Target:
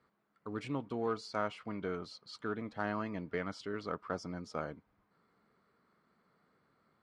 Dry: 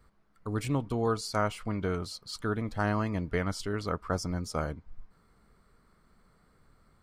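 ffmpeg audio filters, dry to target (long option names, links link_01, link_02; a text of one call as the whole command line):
ffmpeg -i in.wav -filter_complex "[0:a]asplit=2[link_01][link_02];[link_02]asoftclip=type=hard:threshold=-26.5dB,volume=-8.5dB[link_03];[link_01][link_03]amix=inputs=2:normalize=0,highpass=190,lowpass=4000,volume=-7.5dB" out.wav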